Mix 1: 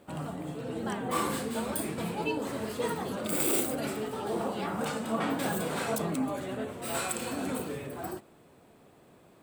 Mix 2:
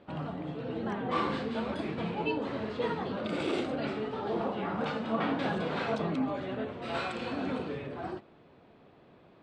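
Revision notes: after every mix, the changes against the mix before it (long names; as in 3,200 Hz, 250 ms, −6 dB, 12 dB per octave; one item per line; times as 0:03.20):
speech: add high-frequency loss of the air 430 metres
master: add low-pass filter 4,200 Hz 24 dB per octave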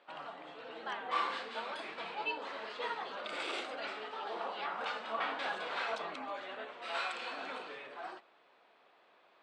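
speech: remove high-frequency loss of the air 430 metres
master: add high-pass filter 860 Hz 12 dB per octave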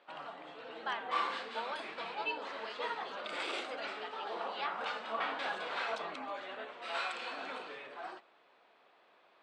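speech +4.0 dB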